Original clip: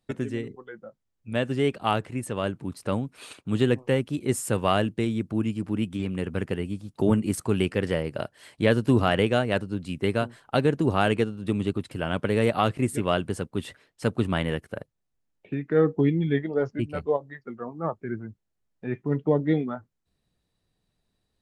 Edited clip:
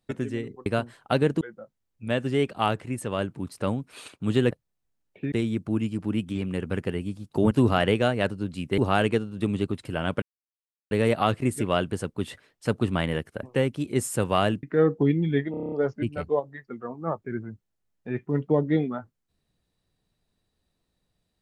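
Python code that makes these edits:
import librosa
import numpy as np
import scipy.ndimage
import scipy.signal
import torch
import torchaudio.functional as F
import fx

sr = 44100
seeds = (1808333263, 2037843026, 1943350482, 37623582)

y = fx.edit(x, sr, fx.swap(start_s=3.76, length_s=1.2, other_s=14.8, other_length_s=0.81),
    fx.cut(start_s=7.15, length_s=1.67),
    fx.move(start_s=10.09, length_s=0.75, to_s=0.66),
    fx.insert_silence(at_s=12.28, length_s=0.69),
    fx.stutter(start_s=16.49, slice_s=0.03, count=8), tone=tone)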